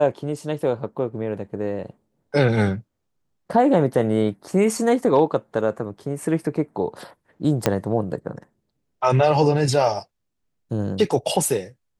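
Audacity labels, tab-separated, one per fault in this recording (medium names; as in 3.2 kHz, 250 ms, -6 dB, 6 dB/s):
7.660000	7.660000	pop -3 dBFS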